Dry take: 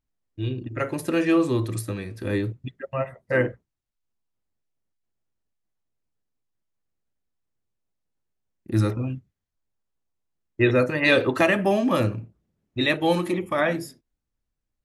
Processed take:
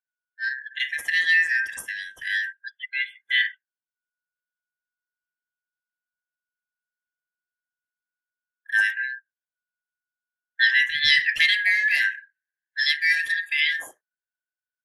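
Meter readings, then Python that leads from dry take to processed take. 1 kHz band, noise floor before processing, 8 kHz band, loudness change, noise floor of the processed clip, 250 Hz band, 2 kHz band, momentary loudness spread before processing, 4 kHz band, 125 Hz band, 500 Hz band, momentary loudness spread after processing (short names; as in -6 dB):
under -20 dB, -83 dBFS, n/a, +2.5 dB, under -85 dBFS, under -40 dB, +9.0 dB, 13 LU, +9.5 dB, under -30 dB, under -35 dB, 14 LU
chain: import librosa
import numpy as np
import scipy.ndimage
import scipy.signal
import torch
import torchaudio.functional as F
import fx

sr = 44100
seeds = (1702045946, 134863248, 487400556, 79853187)

y = fx.band_shuffle(x, sr, order='4123')
y = fx.noise_reduce_blind(y, sr, reduce_db=17)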